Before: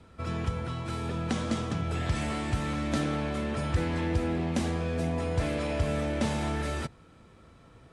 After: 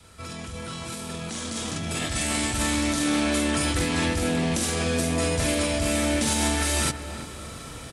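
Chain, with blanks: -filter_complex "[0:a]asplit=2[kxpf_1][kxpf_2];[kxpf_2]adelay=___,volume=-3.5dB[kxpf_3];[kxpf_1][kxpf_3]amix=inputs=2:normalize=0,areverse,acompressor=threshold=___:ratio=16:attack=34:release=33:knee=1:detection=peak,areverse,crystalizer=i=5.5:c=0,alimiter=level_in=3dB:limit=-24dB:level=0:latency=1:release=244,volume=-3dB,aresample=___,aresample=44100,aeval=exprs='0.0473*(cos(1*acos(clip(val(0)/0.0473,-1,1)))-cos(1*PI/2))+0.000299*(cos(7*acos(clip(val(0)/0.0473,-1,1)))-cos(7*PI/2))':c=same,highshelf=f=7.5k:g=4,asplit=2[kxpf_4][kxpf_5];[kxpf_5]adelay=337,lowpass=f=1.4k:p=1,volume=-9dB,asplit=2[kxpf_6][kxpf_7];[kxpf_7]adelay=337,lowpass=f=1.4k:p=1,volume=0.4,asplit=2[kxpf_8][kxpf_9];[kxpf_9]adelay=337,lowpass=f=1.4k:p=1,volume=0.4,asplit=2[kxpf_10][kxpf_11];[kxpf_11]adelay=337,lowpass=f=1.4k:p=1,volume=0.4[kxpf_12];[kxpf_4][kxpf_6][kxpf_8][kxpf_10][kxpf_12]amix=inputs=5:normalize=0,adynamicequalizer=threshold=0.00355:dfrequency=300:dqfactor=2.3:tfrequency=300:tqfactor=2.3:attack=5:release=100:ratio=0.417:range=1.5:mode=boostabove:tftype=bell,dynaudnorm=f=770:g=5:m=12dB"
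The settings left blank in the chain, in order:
44, -40dB, 32000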